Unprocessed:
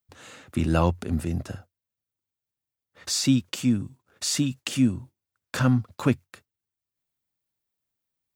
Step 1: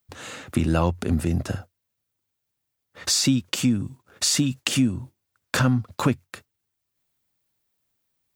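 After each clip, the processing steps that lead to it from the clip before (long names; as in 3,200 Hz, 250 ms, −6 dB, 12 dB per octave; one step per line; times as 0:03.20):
downward compressor 3 to 1, threshold −28 dBFS, peak gain reduction 10 dB
level +8.5 dB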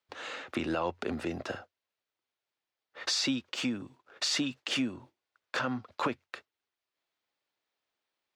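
three-way crossover with the lows and the highs turned down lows −21 dB, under 330 Hz, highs −22 dB, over 5,100 Hz
brickwall limiter −19.5 dBFS, peak gain reduction 11 dB
level −1 dB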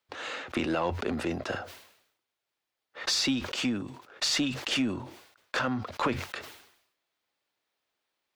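in parallel at −6 dB: asymmetric clip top −35.5 dBFS
on the sum: level that may fall only so fast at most 77 dB per second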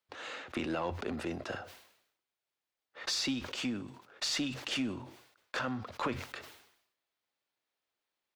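repeating echo 62 ms, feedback 58%, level −21.5 dB
level −6 dB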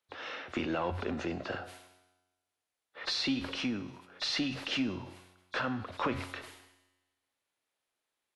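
hearing-aid frequency compression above 3,300 Hz 1.5 to 1
tuned comb filter 91 Hz, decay 1.2 s, harmonics all, mix 60%
level +9 dB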